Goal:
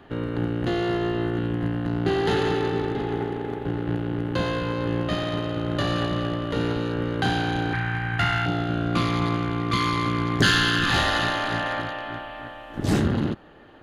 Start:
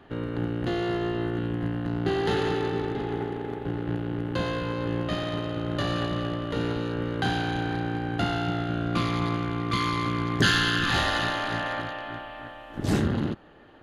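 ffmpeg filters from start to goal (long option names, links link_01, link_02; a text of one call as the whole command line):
ffmpeg -i in.wav -filter_complex "[0:a]asettb=1/sr,asplit=3[link_01][link_02][link_03];[link_01]atrim=end=7.734[link_04];[link_02]atrim=start=7.73:end=8.46,asetpts=PTS-STARTPTS,afade=type=in:duration=0.004:curve=qsin,afade=type=out:start_time=0.726:duration=0.004:curve=qsin,equalizer=frequency=125:width_type=o:width=1:gain=5,equalizer=frequency=250:width_type=o:width=1:gain=-10,equalizer=frequency=500:width_type=o:width=1:gain=-11,equalizer=frequency=1000:width_type=o:width=1:gain=3,equalizer=frequency=2000:width_type=o:width=1:gain=11,equalizer=frequency=4000:width_type=o:width=1:gain=-4[link_05];[link_03]atrim=start=8.456[link_06];[link_04][link_05]acrossfade=duration=0.004:curve1=hsin:curve2=qsin[link_07];[link_07][link_06]acrossfade=duration=0.004:curve1=qsin:curve2=hsin,acrossover=split=3400[link_08][link_09];[link_08]aeval=exprs='clip(val(0),-1,0.119)':channel_layout=same[link_10];[link_10][link_09]amix=inputs=2:normalize=0,volume=3dB" out.wav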